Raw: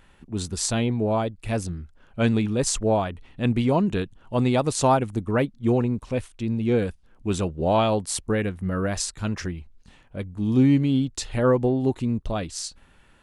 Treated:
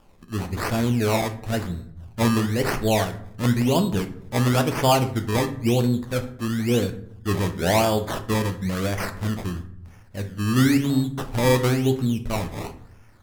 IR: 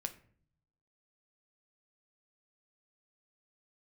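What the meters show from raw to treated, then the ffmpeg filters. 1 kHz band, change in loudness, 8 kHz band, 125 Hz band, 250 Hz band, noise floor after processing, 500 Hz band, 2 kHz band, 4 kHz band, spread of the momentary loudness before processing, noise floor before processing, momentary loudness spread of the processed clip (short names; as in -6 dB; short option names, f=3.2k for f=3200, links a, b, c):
+1.5 dB, +1.0 dB, -2.5 dB, +2.5 dB, +0.5 dB, -47 dBFS, 0.0 dB, +5.0 dB, +4.0 dB, 12 LU, -55 dBFS, 13 LU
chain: -filter_complex "[0:a]acrusher=samples=21:mix=1:aa=0.000001:lfo=1:lforange=21:lforate=0.98[a];[1:a]atrim=start_sample=2205,asetrate=32634,aresample=44100[b];[a][b]afir=irnorm=-1:irlink=0"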